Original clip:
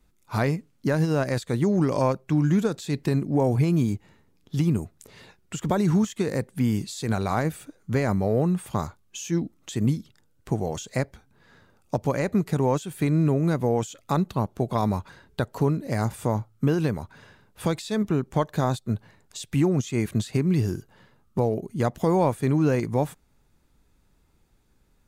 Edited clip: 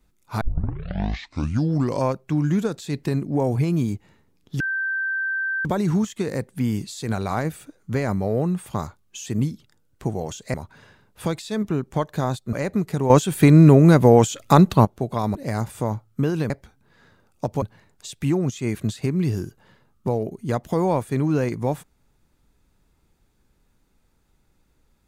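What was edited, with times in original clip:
0:00.41: tape start 1.60 s
0:04.60–0:05.65: beep over 1,560 Hz −22 dBFS
0:09.26–0:09.72: remove
0:11.00–0:12.12: swap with 0:16.94–0:18.93
0:12.69–0:14.44: clip gain +10.5 dB
0:14.94–0:15.79: remove

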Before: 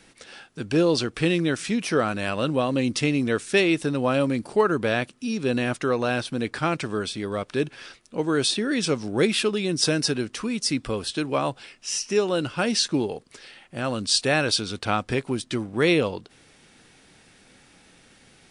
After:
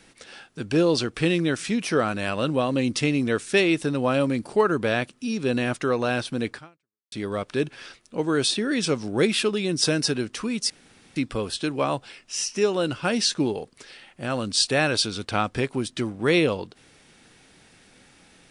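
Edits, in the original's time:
0:06.52–0:07.12: fade out exponential
0:10.70: splice in room tone 0.46 s

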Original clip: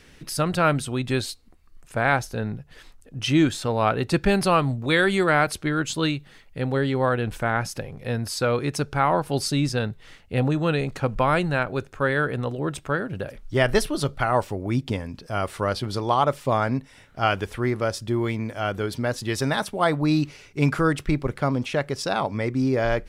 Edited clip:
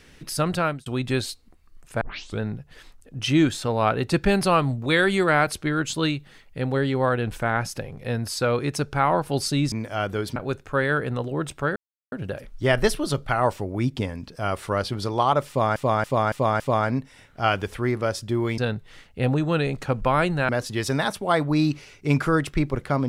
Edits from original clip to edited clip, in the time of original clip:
0:00.53–0:00.86: fade out
0:02.01: tape start 0.39 s
0:09.72–0:11.63: swap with 0:18.37–0:19.01
0:13.03: splice in silence 0.36 s
0:16.39–0:16.67: repeat, 5 plays

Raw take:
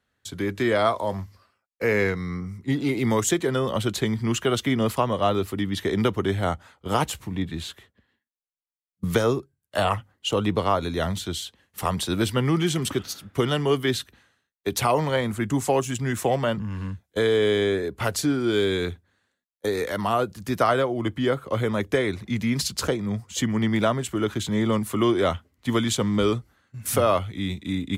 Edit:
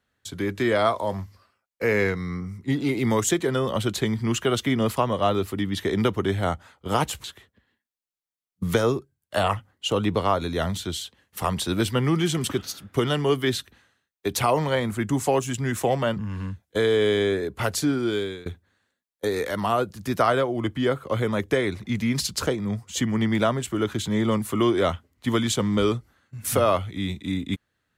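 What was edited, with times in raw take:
0:07.24–0:07.65: remove
0:18.39–0:18.87: fade out, to −23 dB

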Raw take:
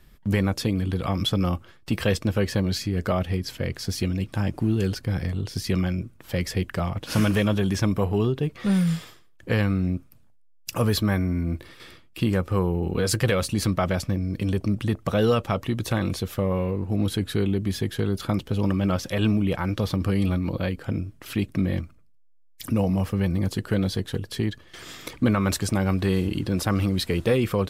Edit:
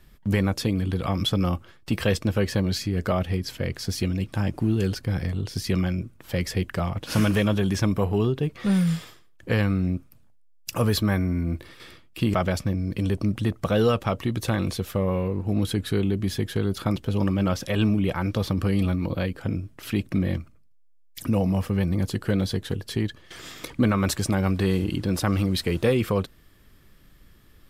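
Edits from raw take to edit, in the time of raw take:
0:12.34–0:13.77: remove

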